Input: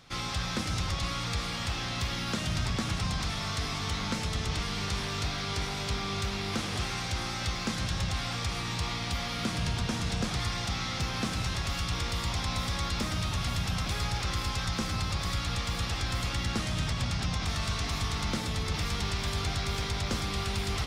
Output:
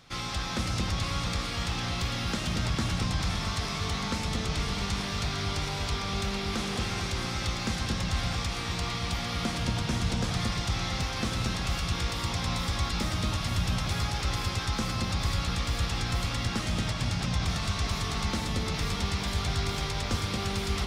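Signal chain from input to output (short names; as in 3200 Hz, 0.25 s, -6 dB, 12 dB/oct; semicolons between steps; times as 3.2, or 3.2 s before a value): echo with dull and thin repeats by turns 0.227 s, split 920 Hz, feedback 53%, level -2.5 dB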